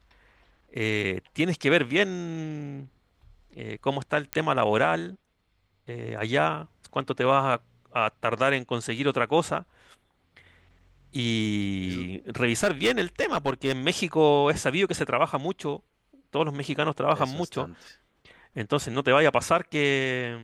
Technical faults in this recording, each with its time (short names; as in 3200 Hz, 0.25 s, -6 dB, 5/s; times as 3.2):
4.33 pop -10 dBFS
12.63–13.73 clipped -17 dBFS